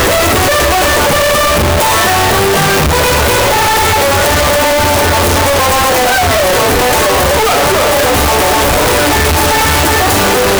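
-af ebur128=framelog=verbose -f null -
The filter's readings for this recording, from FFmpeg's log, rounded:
Integrated loudness:
  I:          -9.0 LUFS
  Threshold: -19.0 LUFS
Loudness range:
  LRA:         0.1 LU
  Threshold: -29.0 LUFS
  LRA low:    -9.1 LUFS
  LRA high:   -9.0 LUFS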